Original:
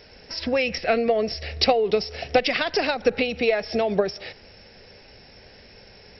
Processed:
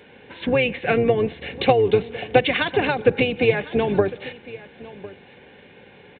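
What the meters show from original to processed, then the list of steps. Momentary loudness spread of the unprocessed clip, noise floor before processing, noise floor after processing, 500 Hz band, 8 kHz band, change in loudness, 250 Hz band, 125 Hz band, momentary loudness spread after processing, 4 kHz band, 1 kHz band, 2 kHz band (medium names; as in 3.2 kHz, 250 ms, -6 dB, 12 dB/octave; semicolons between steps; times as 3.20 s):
8 LU, -49 dBFS, -49 dBFS, +3.0 dB, no reading, +2.5 dB, +4.0 dB, +10.5 dB, 20 LU, -2.0 dB, +2.0 dB, +3.0 dB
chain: octave divider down 2 oct, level +3 dB; resampled via 8 kHz; high-pass 150 Hz 12 dB/octave; comb of notches 650 Hz; delay 1054 ms -18.5 dB; trim +4 dB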